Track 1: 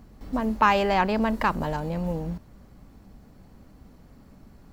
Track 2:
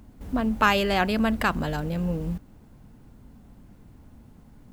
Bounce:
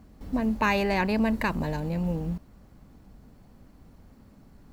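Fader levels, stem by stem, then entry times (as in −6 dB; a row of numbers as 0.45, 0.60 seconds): −3.5, −8.0 decibels; 0.00, 0.00 seconds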